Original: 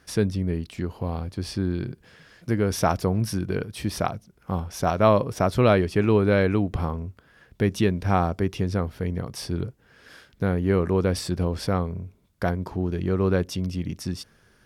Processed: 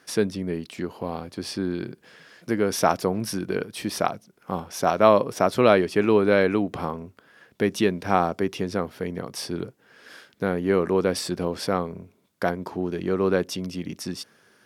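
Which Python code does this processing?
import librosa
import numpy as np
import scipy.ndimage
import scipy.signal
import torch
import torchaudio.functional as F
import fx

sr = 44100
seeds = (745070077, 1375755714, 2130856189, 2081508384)

y = scipy.signal.sosfilt(scipy.signal.butter(2, 230.0, 'highpass', fs=sr, output='sos'), x)
y = F.gain(torch.from_numpy(y), 2.5).numpy()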